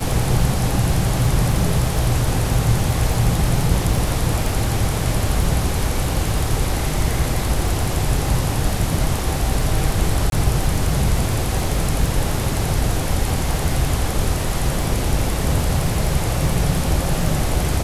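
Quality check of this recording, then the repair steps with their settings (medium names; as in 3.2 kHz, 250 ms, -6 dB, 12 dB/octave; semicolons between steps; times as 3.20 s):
crackle 46 per s -26 dBFS
10.30–10.32 s: dropout 22 ms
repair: de-click; interpolate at 10.30 s, 22 ms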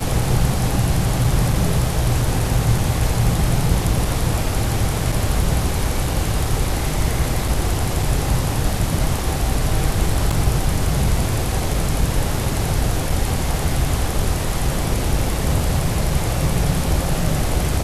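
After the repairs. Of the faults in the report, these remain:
nothing left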